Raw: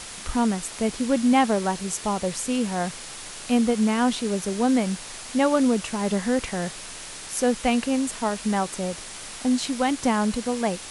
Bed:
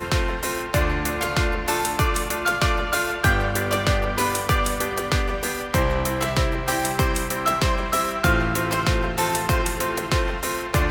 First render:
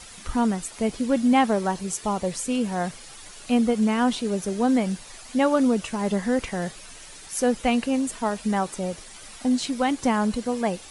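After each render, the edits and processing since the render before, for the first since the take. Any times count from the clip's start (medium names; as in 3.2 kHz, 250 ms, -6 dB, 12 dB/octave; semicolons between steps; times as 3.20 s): noise reduction 10 dB, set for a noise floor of -39 dBFS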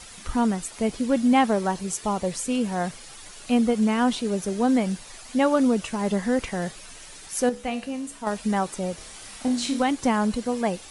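7.49–8.27 s: feedback comb 70 Hz, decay 0.42 s, mix 70%; 8.97–9.83 s: flutter echo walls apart 5 m, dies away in 0.36 s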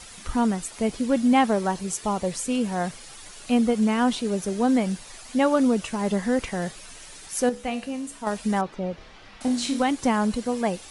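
8.61–9.41 s: distance through air 250 m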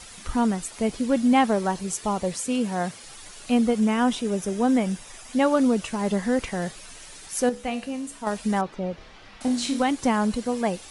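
2.33–3.04 s: high-pass 88 Hz; 3.80–5.33 s: band-stop 4.3 kHz, Q 7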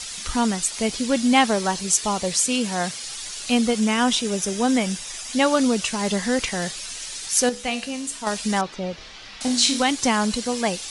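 peaking EQ 5.3 kHz +13.5 dB 2.6 oct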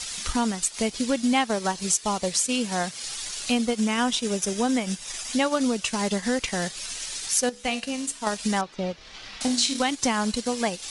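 compression 2:1, threshold -23 dBFS, peak gain reduction 6.5 dB; transient shaper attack +1 dB, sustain -8 dB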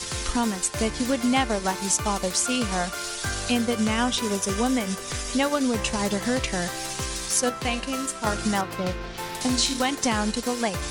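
add bed -11.5 dB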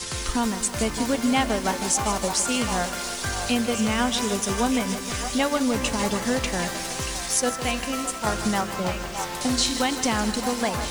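repeats whose band climbs or falls 614 ms, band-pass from 890 Hz, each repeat 1.4 oct, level -5.5 dB; bit-crushed delay 157 ms, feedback 80%, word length 6-bit, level -11 dB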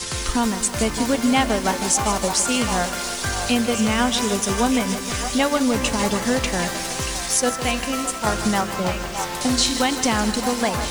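trim +3.5 dB; peak limiter -2 dBFS, peak gain reduction 1 dB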